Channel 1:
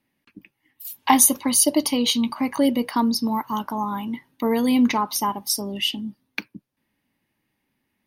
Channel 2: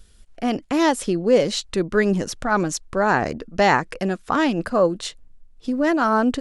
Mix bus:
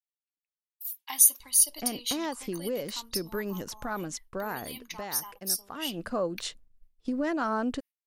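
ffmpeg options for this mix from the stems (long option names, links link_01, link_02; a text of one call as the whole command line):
ffmpeg -i stem1.wav -i stem2.wav -filter_complex "[0:a]aderivative,volume=-5dB[link_01];[1:a]acompressor=threshold=-23dB:ratio=3,adelay=1400,volume=2.5dB,afade=type=out:start_time=4.34:duration=0.53:silence=0.446684,afade=type=in:start_time=5.76:duration=0.48:silence=0.281838[link_02];[link_01][link_02]amix=inputs=2:normalize=0,agate=range=-33dB:threshold=-40dB:ratio=3:detection=peak" out.wav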